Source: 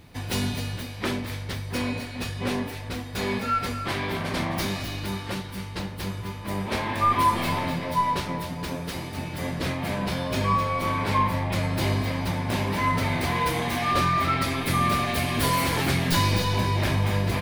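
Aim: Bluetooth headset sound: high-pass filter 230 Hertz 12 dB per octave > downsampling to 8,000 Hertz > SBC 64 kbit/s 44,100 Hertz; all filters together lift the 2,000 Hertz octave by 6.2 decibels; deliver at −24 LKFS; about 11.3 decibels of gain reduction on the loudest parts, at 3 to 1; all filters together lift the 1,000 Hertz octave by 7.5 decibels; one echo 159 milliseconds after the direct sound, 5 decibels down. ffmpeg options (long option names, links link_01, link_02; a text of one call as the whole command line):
ffmpeg -i in.wav -af "equalizer=frequency=1000:width_type=o:gain=7,equalizer=frequency=2000:width_type=o:gain=5.5,acompressor=threshold=-26dB:ratio=3,highpass=230,aecho=1:1:159:0.562,aresample=8000,aresample=44100,volume=3.5dB" -ar 44100 -c:a sbc -b:a 64k out.sbc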